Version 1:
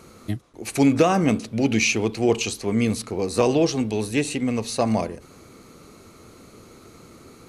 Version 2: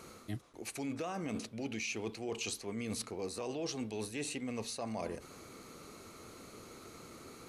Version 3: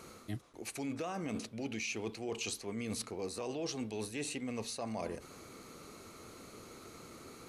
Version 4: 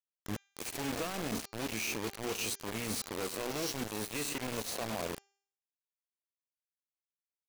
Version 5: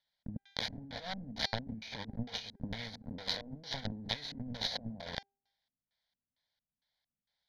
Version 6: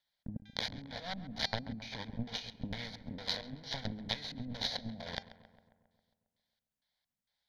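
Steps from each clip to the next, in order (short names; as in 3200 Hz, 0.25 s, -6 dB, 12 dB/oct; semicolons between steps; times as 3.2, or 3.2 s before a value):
low shelf 320 Hz -6.5 dB; limiter -14.5 dBFS, peak gain reduction 6.5 dB; reverse; compressor, threshold -34 dBFS, peak gain reduction 14 dB; reverse; gain -2.5 dB
nothing audible
spectral swells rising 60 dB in 0.46 s; requantised 6-bit, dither none; de-hum 397.6 Hz, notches 18
negative-ratio compressor -43 dBFS, ratio -0.5; LFO low-pass square 2.2 Hz 260–3700 Hz; fixed phaser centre 1800 Hz, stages 8; gain +7.5 dB
darkening echo 0.135 s, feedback 63%, low-pass 2500 Hz, level -14.5 dB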